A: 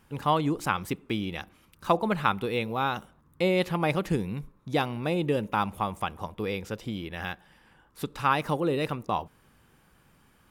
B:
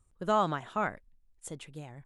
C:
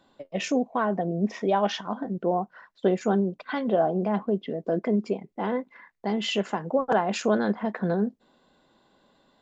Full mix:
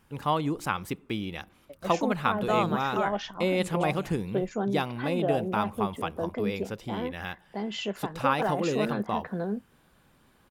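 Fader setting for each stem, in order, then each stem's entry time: -2.0 dB, 0.0 dB, -6.0 dB; 0.00 s, 2.20 s, 1.50 s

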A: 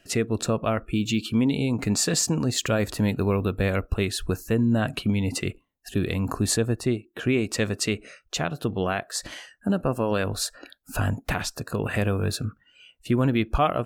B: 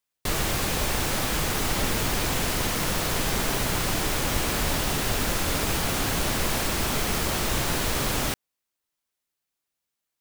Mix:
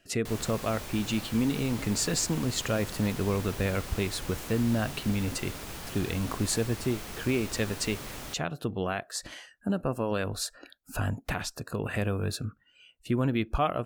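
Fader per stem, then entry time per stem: -5.0 dB, -14.5 dB; 0.00 s, 0.00 s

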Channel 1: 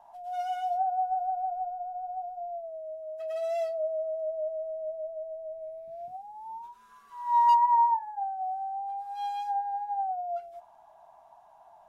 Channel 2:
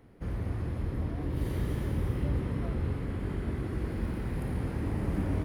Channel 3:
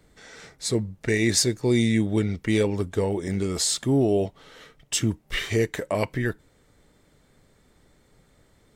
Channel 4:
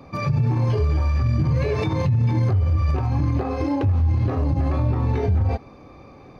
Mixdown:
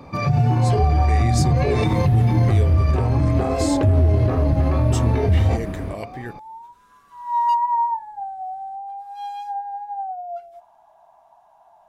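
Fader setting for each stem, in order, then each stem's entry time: +2.0 dB, +1.0 dB, -8.0 dB, +2.5 dB; 0.00 s, 0.50 s, 0.00 s, 0.00 s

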